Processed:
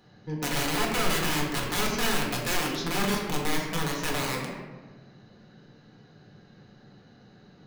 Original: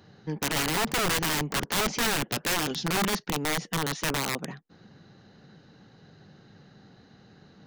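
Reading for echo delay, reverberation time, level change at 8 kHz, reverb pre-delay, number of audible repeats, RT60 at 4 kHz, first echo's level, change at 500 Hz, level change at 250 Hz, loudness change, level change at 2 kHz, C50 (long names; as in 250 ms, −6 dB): no echo audible, 1.4 s, −2.0 dB, 4 ms, no echo audible, 0.75 s, no echo audible, +0.5 dB, +1.0 dB, −0.5 dB, −0.5 dB, 2.5 dB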